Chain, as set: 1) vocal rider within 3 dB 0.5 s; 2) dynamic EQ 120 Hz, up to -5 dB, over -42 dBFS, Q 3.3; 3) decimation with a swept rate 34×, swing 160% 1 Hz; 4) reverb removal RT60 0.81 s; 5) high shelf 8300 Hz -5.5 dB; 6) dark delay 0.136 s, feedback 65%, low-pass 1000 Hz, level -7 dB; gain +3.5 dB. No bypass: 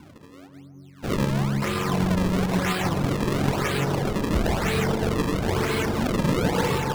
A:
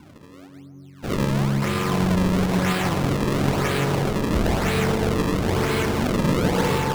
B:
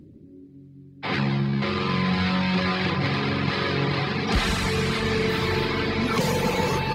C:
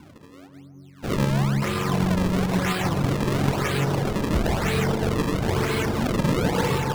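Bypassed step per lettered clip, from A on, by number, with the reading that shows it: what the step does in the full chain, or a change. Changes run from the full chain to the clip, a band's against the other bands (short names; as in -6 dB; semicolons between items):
4, loudness change +2.0 LU; 3, 4 kHz band +5.5 dB; 2, 125 Hz band +1.5 dB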